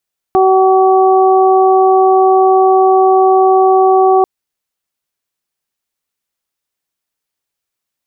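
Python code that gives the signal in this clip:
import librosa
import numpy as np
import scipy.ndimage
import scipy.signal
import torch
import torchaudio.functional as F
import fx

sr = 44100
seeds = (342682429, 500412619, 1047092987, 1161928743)

y = fx.additive_steady(sr, length_s=3.89, hz=379.0, level_db=-8.5, upper_db=(-0.5, -9))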